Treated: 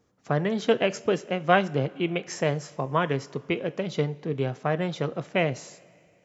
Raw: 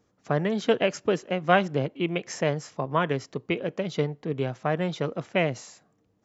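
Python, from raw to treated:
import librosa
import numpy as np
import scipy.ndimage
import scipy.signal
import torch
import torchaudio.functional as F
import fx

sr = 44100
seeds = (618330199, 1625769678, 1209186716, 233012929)

y = fx.rev_double_slope(x, sr, seeds[0], early_s=0.34, late_s=2.7, knee_db=-17, drr_db=14.0)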